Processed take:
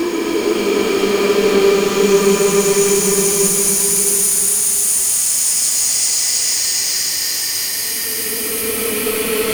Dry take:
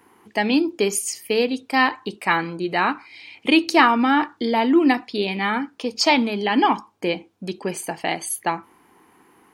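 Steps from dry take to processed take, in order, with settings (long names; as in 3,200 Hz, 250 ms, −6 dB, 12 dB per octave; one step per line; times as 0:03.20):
power curve on the samples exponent 0.35
extreme stretch with random phases 17×, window 0.25 s, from 0:00.74
level −3.5 dB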